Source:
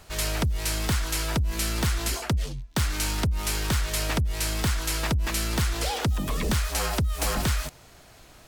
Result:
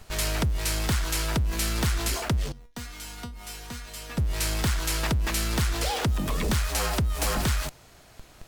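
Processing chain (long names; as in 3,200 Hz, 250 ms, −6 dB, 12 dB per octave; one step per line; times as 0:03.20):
in parallel at −11.5 dB: comparator with hysteresis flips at −39.5 dBFS
0:02.52–0:04.18: on the sum: tuned comb filter 240 Hz, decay 0.21 s, harmonics all, mix 90%
level −1.5 dB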